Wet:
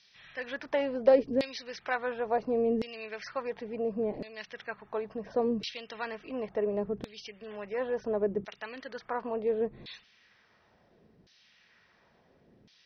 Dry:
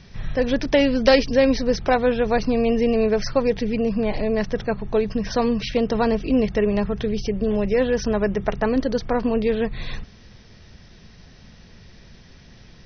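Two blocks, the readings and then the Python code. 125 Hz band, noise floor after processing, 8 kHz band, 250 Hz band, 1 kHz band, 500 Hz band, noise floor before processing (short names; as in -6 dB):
-18.5 dB, -66 dBFS, n/a, -15.5 dB, -10.0 dB, -10.0 dB, -47 dBFS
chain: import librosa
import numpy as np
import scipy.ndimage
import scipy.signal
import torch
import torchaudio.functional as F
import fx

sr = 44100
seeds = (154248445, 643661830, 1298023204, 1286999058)

y = fx.filter_lfo_bandpass(x, sr, shape='saw_down', hz=0.71, low_hz=290.0, high_hz=4400.0, q=1.4)
y = F.gain(torch.from_numpy(y), -5.0).numpy()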